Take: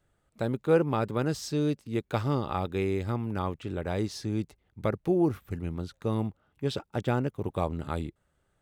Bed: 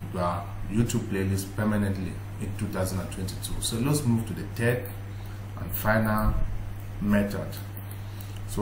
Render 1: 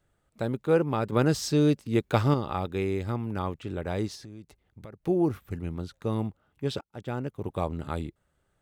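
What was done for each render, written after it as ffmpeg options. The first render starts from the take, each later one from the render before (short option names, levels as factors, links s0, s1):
-filter_complex "[0:a]asettb=1/sr,asplit=3[s0][s1][s2];[s0]atrim=end=1.124[s3];[s1]atrim=start=1.12:end=2.34,asetpts=PTS-STARTPTS,afade=t=in:d=0.004:c=qsin,afade=t=out:st=1.216:d=0.004:c=qsin,acontrast=35[s4];[s2]atrim=start=2.336[s5];[s3][s4]acrossfade=d=0.004:c1=hsin:c2=qsin[s6];[s6][s5]acrossfade=d=0.004:c1=qsin:c2=hsin,asettb=1/sr,asplit=3[s7][s8][s9];[s7]atrim=end=4.154[s10];[s8]atrim=start=4.15:end=5.04,asetpts=PTS-STARTPTS,afade=t=in:d=0.004:c=qsin,afade=t=out:st=0.886:d=0.004:c=qsin,acompressor=threshold=0.00708:ratio=4:attack=3.2:release=140:knee=1:detection=peak[s11];[s9]atrim=start=5.036[s12];[s10][s11]acrossfade=d=0.004:c1=hsin:c2=qsin[s13];[s13][s12]acrossfade=d=0.004:c1=qsin:c2=hsin,asplit=2[s14][s15];[s14]atrim=end=6.81,asetpts=PTS-STARTPTS,afade=t=out:st=6.806:d=0.004:c=hsin:silence=0.0794328[s16];[s15]atrim=start=6.81,asetpts=PTS-STARTPTS,afade=t=in:d=1:c=qsin:silence=0.0794328[s17];[s16][s17]concat=n=2:v=0:a=1"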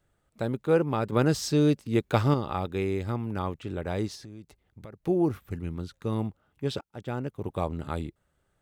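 -filter_complex "[0:a]asettb=1/sr,asplit=3[s0][s1][s2];[s0]atrim=end=5.564[s3];[s1]atrim=start=5.56:end=6.12,asetpts=PTS-STARTPTS,afade=t=in:d=0.004:c=qsin,afade=t=out:st=0.556:d=0.004:c=qsin,equalizer=f=680:w=1.9:g=-6[s4];[s2]atrim=start=6.116[s5];[s3][s4]acrossfade=d=0.004:c1=hsin:c2=qsin[s6];[s6][s5]acrossfade=d=0.004:c1=qsin:c2=hsin"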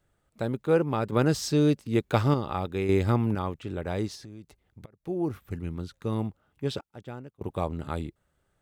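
-filter_complex "[0:a]asettb=1/sr,asplit=3[s0][s1][s2];[s0]atrim=end=2.894[s3];[s1]atrim=start=2.89:end=3.35,asetpts=PTS-STARTPTS,afade=t=in:d=0.004:c=qsin,afade=t=out:st=0.456:d=0.004:c=qsin,acontrast=75[s4];[s2]atrim=start=3.346[s5];[s3][s4]acrossfade=d=0.004:c1=hsin:c2=qsin[s6];[s6][s5]acrossfade=d=0.004:c1=qsin:c2=hsin,asplit=3[s7][s8][s9];[s7]atrim=end=4.86,asetpts=PTS-STARTPTS,afade=t=out:st=4.856:d=0.004:c=hsin:silence=0.141254[s10];[s8]atrim=start=4.86:end=7.41,asetpts=PTS-STARTPTS,afade=t=in:d=0.67:silence=0.141254,afade=t=out:st=1.85:d=0.7:silence=0.0794328[s11];[s9]atrim=start=7.41,asetpts=PTS-STARTPTS,afade=t=in:d=0.004:c=hsin:silence=0.0794328[s12];[s10][s11][s12]concat=n=3:v=0:a=1"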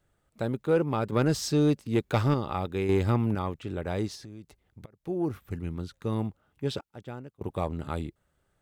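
-af "asoftclip=type=tanh:threshold=0.2"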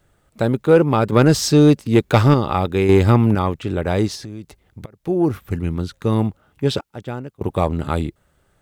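-af "volume=3.76"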